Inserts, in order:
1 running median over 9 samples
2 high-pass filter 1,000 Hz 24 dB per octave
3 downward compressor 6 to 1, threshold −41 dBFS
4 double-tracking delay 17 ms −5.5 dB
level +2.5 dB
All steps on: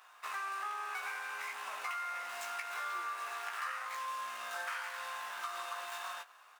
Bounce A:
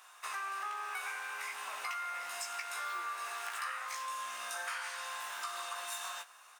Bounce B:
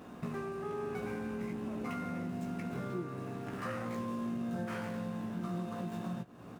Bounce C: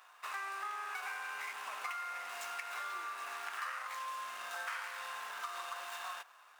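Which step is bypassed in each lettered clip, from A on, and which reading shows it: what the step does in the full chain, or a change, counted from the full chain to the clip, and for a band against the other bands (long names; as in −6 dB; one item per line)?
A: 1, 8 kHz band +6.5 dB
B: 2, 500 Hz band +21.0 dB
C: 4, change in integrated loudness −1.5 LU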